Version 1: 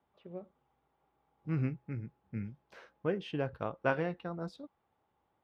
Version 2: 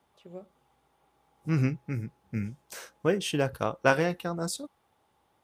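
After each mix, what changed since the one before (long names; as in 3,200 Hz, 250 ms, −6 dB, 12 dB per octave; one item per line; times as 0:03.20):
second voice +6.5 dB
master: remove high-frequency loss of the air 320 metres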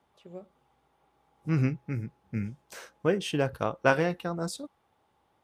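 second voice: add high-shelf EQ 5,700 Hz −7.5 dB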